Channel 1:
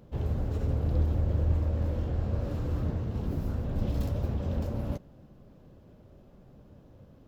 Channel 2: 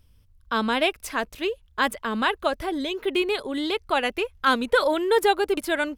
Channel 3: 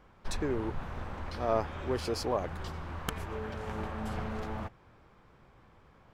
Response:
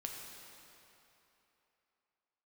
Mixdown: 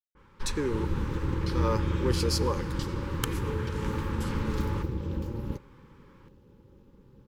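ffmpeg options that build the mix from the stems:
-filter_complex "[0:a]tremolo=f=250:d=0.824,adelay=600,volume=2dB[a];[2:a]adynamicequalizer=threshold=0.00224:dfrequency=3200:dqfactor=0.7:tfrequency=3200:tqfactor=0.7:attack=5:release=100:ratio=0.375:range=3.5:mode=boostabove:tftype=highshelf,adelay=150,volume=1dB,asplit=2[b][c];[c]volume=-10.5dB[d];[3:a]atrim=start_sample=2205[e];[d][e]afir=irnorm=-1:irlink=0[f];[a][b][f]amix=inputs=3:normalize=0,asuperstop=centerf=680:order=12:qfactor=2.7"

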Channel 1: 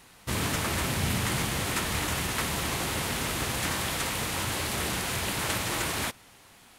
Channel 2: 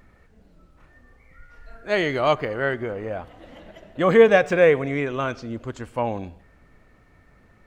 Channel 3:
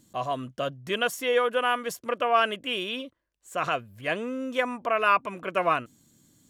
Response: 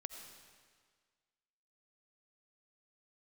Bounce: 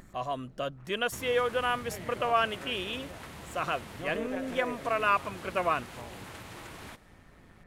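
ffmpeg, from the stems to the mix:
-filter_complex "[0:a]adelay=850,volume=-9dB,asplit=2[a][b];[b]volume=-18.5dB[c];[1:a]acompressor=mode=upward:threshold=-31dB:ratio=2.5,tremolo=f=170:d=0.889,volume=-10.5dB,asplit=2[d][e];[e]volume=-7.5dB[f];[2:a]volume=-4dB,asplit=2[g][h];[h]apad=whole_len=337815[i];[d][i]sidechaincompress=threshold=-31dB:ratio=8:attack=16:release=1280[j];[a][j]amix=inputs=2:normalize=0,highshelf=f=4k:g=-11.5,acompressor=threshold=-43dB:ratio=6,volume=0dB[k];[3:a]atrim=start_sample=2205[l];[c][f]amix=inputs=2:normalize=0[m];[m][l]afir=irnorm=-1:irlink=0[n];[g][k][n]amix=inputs=3:normalize=0"

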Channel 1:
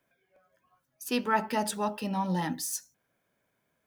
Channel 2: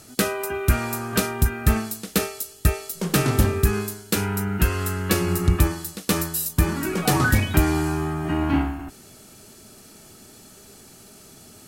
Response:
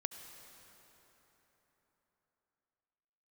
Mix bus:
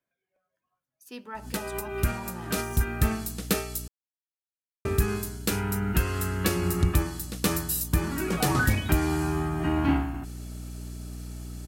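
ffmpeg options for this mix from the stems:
-filter_complex "[0:a]volume=-13.5dB,asplit=3[a][b][c];[b]volume=-16dB[d];[1:a]aeval=exprs='val(0)+0.02*(sin(2*PI*60*n/s)+sin(2*PI*2*60*n/s)/2+sin(2*PI*3*60*n/s)/3+sin(2*PI*4*60*n/s)/4+sin(2*PI*5*60*n/s)/5)':c=same,adelay=1350,volume=-2.5dB,asplit=3[e][f][g];[e]atrim=end=3.88,asetpts=PTS-STARTPTS,afade=t=out:st=3.876:d=0.004:c=hsin[h];[f]atrim=start=3.88:end=4.85,asetpts=PTS-STARTPTS,volume=0[i];[g]atrim=start=4.85,asetpts=PTS-STARTPTS,afade=t=in:d=0.004:c=hsin[j];[h][i][j]concat=n=3:v=0:a=1[k];[c]apad=whole_len=574282[l];[k][l]sidechaincompress=threshold=-48dB:ratio=8:attack=21:release=134[m];[2:a]atrim=start_sample=2205[n];[d][n]afir=irnorm=-1:irlink=0[o];[a][m][o]amix=inputs=3:normalize=0,alimiter=limit=-11dB:level=0:latency=1:release=435"

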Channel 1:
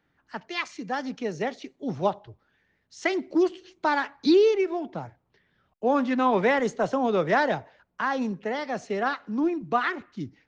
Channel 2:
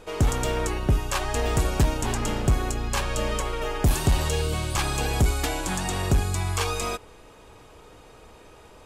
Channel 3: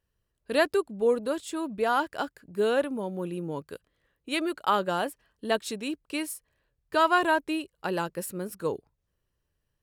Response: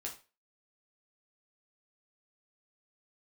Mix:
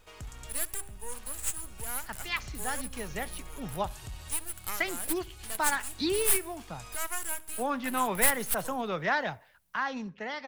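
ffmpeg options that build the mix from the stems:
-filter_complex "[0:a]highshelf=f=8.7k:g=-11,adelay=1750,volume=0dB[a];[1:a]acompressor=threshold=-34dB:ratio=2.5,volume=-8.5dB,asplit=2[b][c];[c]volume=-13.5dB[d];[2:a]bandreject=f=79.71:t=h:w=4,bandreject=f=159.42:t=h:w=4,bandreject=f=239.13:t=h:w=4,bandreject=f=318.84:t=h:w=4,bandreject=f=398.55:t=h:w=4,aexciter=amount=8.7:drive=9.5:freq=6.3k,aeval=exprs='max(val(0),0)':c=same,volume=-7.5dB,asplit=3[e][f][g];[f]volume=-22dB[h];[g]apad=whole_len=390627[i];[b][i]sidechaincompress=threshold=-37dB:ratio=4:attack=21:release=432[j];[d][h]amix=inputs=2:normalize=0,aecho=0:1:68|136|204|272|340|408|476|544:1|0.54|0.292|0.157|0.085|0.0459|0.0248|0.0134[k];[a][j][e][k]amix=inputs=4:normalize=0,equalizer=f=370:w=0.53:g=-12"

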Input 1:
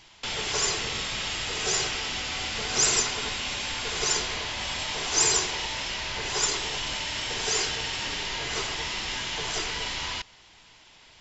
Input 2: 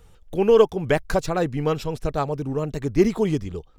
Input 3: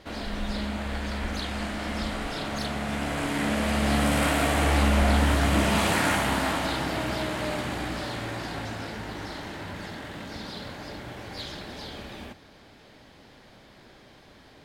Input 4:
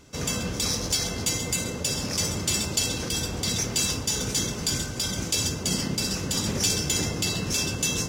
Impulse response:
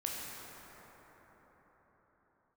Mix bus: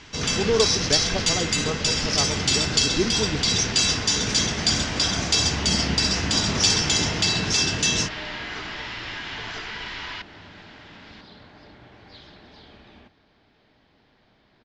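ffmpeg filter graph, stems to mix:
-filter_complex "[0:a]equalizer=f=1.6k:w=1.5:g=9,acompressor=threshold=-33dB:ratio=6,volume=2dB[a];[1:a]volume=-6dB[b];[2:a]adelay=750,volume=-9dB[c];[3:a]aemphasis=mode=production:type=75fm,volume=2.5dB[d];[a][b][c][d]amix=inputs=4:normalize=0,lowpass=f=5.1k:w=0.5412,lowpass=f=5.1k:w=1.3066,bandreject=f=540:w=12"

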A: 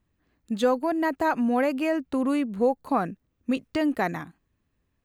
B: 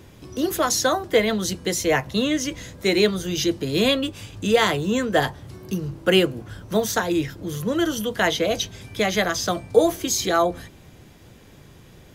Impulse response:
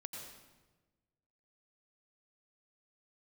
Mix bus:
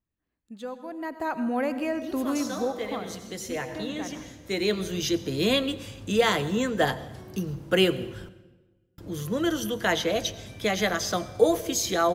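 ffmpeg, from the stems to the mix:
-filter_complex "[0:a]volume=-6.5dB,afade=t=in:st=0.83:d=0.65:silence=0.298538,afade=t=out:st=2.39:d=0.68:silence=0.316228,asplit=3[a][b][c];[b]volume=-3dB[d];[1:a]adelay=1650,volume=-5.5dB,asplit=3[e][f][g];[e]atrim=end=8.29,asetpts=PTS-STARTPTS,afade=t=out:st=8.286:d=0.004:c=hsin[h];[f]atrim=start=8.29:end=8.98,asetpts=PTS-STARTPTS,volume=0[i];[g]atrim=start=8.98,asetpts=PTS-STARTPTS,afade=t=in:d=0.004:c=hsin[j];[h][i][j]concat=n=3:v=0:a=1,asplit=2[k][l];[l]volume=-8.5dB[m];[c]apad=whole_len=608340[n];[k][n]sidechaincompress=threshold=-49dB:ratio=8:attack=16:release=995[o];[2:a]atrim=start_sample=2205[p];[d][m]amix=inputs=2:normalize=0[q];[q][p]afir=irnorm=-1:irlink=0[r];[a][o][r]amix=inputs=3:normalize=0"

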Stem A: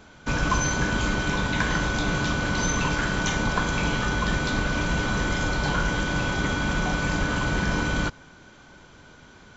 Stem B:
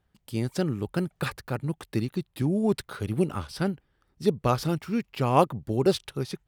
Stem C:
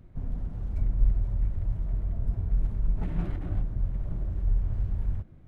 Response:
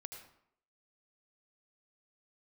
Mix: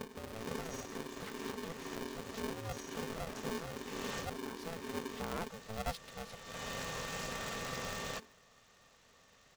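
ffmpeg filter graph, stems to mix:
-filter_complex "[0:a]highshelf=f=3.4k:g=11.5,bandreject=f=50:t=h:w=6,bandreject=f=100:t=h:w=6,adelay=100,volume=-17.5dB,asplit=2[a][b];[b]volume=-14.5dB[c];[1:a]volume=-16dB,asplit=2[d][e];[2:a]acompressor=threshold=-35dB:ratio=5,aphaser=in_gain=1:out_gain=1:delay=4.4:decay=0.73:speed=2:type=sinusoidal,volume=0dB[f];[e]apad=whole_len=426340[g];[a][g]sidechaincompress=threshold=-57dB:ratio=10:attack=6.4:release=308[h];[d][f]amix=inputs=2:normalize=0,alimiter=level_in=5dB:limit=-24dB:level=0:latency=1:release=64,volume=-5dB,volume=0dB[i];[3:a]atrim=start_sample=2205[j];[c][j]afir=irnorm=-1:irlink=0[k];[h][i][k]amix=inputs=3:normalize=0,highpass=f=64:w=0.5412,highpass=f=64:w=1.3066,aeval=exprs='val(0)*sgn(sin(2*PI*330*n/s))':c=same"

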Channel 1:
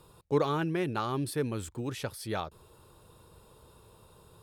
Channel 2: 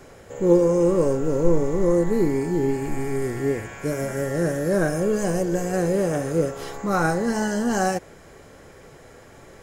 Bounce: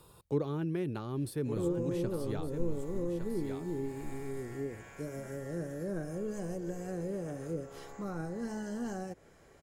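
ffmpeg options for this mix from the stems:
-filter_complex "[0:a]highshelf=f=8.1k:g=5.5,volume=-1.5dB,asplit=2[a][b];[b]volume=-10dB[c];[1:a]adelay=1150,volume=-13.5dB[d];[c]aecho=0:1:1160:1[e];[a][d][e]amix=inputs=3:normalize=0,acrossover=split=450[f][g];[g]acompressor=threshold=-45dB:ratio=6[h];[f][h]amix=inputs=2:normalize=0"

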